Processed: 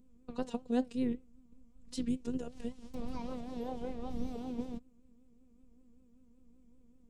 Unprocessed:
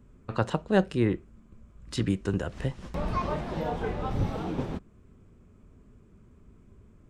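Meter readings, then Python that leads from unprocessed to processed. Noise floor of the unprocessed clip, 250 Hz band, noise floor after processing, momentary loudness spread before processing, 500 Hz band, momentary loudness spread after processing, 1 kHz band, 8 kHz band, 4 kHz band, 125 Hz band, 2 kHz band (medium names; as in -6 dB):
-57 dBFS, -5.5 dB, -63 dBFS, 10 LU, -10.5 dB, 11 LU, -13.0 dB, -6.5 dB, -10.5 dB, -19.0 dB, -18.0 dB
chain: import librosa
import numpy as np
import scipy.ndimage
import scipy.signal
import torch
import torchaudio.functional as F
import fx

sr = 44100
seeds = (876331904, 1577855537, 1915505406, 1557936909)

y = fx.robotise(x, sr, hz=246.0)
y = fx.vibrato(y, sr, rate_hz=5.2, depth_cents=94.0)
y = fx.peak_eq(y, sr, hz=1500.0, db=-14.5, octaves=1.7)
y = F.gain(torch.from_numpy(y), -3.5).numpy()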